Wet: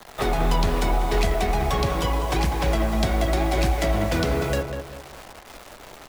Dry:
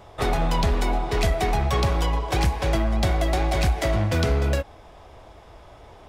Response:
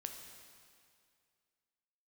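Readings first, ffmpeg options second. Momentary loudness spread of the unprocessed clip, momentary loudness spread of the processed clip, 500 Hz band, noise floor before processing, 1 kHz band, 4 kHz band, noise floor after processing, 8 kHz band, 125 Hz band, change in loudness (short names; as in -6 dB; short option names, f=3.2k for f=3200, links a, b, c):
3 LU, 19 LU, +1.5 dB, -47 dBFS, +1.0 dB, +0.5 dB, -44 dBFS, +1.0 dB, -2.0 dB, 0.0 dB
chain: -filter_complex "[0:a]acrusher=bits=6:mix=0:aa=0.000001,flanger=delay=3.7:depth=4.3:regen=-73:speed=0.76:shape=triangular,equalizer=f=83:w=0.74:g=-8,acrossover=split=410[a][b];[b]acompressor=threshold=-31dB:ratio=6[c];[a][c]amix=inputs=2:normalize=0,asplit=2[d][e];[e]adelay=196,lowpass=f=1.8k:p=1,volume=-6dB,asplit=2[f][g];[g]adelay=196,lowpass=f=1.8k:p=1,volume=0.38,asplit=2[h][i];[i]adelay=196,lowpass=f=1.8k:p=1,volume=0.38,asplit=2[j][k];[k]adelay=196,lowpass=f=1.8k:p=1,volume=0.38,asplit=2[l][m];[m]adelay=196,lowpass=f=1.8k:p=1,volume=0.38[n];[f][h][j][l][n]amix=inputs=5:normalize=0[o];[d][o]amix=inputs=2:normalize=0,volume=7dB"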